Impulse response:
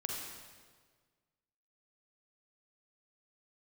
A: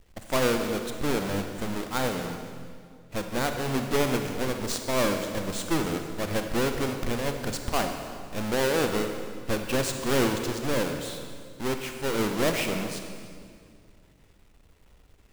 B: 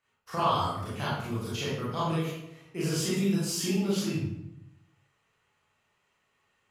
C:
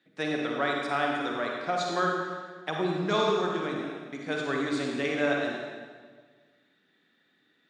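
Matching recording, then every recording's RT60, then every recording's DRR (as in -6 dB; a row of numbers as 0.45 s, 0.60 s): C; 2.1 s, 0.85 s, 1.6 s; 5.0 dB, -9.0 dB, -1.0 dB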